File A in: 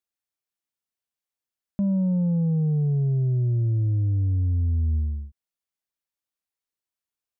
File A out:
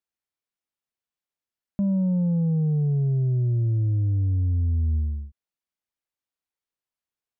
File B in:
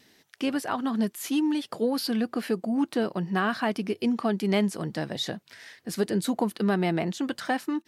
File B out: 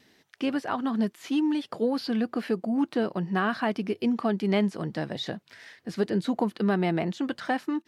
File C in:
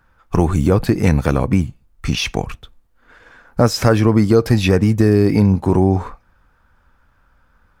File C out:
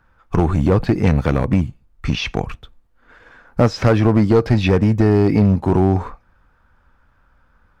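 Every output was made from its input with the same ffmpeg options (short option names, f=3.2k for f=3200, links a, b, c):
-filter_complex "[0:a]acrossover=split=5800[a][b];[b]acompressor=threshold=-49dB:ratio=4:attack=1:release=60[c];[a][c]amix=inputs=2:normalize=0,highshelf=f=5.4k:g=-8,aeval=exprs='clip(val(0),-1,0.376)':c=same"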